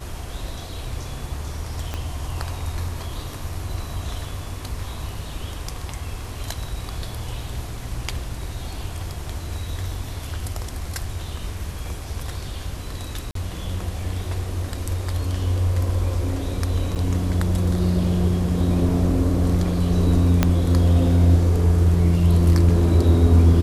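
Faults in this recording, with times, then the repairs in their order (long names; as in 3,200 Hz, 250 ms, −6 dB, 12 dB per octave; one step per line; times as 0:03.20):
0:01.94: click −14 dBFS
0:13.31–0:13.35: drop-out 43 ms
0:16.95–0:16.96: drop-out 8 ms
0:20.43: click −3 dBFS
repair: click removal
repair the gap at 0:13.31, 43 ms
repair the gap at 0:16.95, 8 ms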